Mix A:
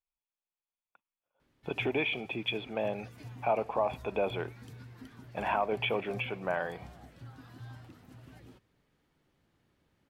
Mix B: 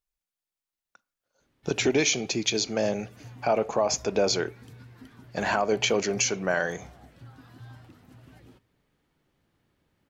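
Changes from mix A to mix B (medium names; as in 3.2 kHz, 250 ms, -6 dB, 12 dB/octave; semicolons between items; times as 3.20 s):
speech: remove rippled Chebyshev low-pass 3.5 kHz, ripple 9 dB; reverb: on, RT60 0.45 s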